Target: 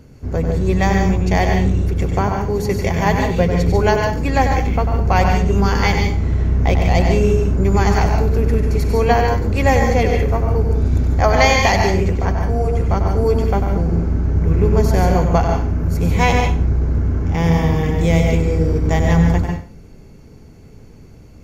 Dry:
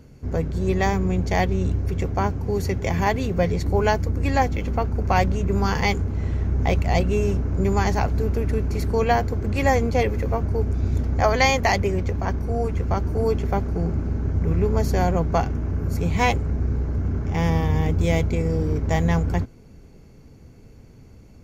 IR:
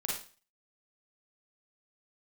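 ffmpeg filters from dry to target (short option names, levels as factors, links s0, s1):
-filter_complex "[0:a]asplit=2[s0][s1];[1:a]atrim=start_sample=2205,adelay=96[s2];[s1][s2]afir=irnorm=-1:irlink=0,volume=0.531[s3];[s0][s3]amix=inputs=2:normalize=0,volume=1.5"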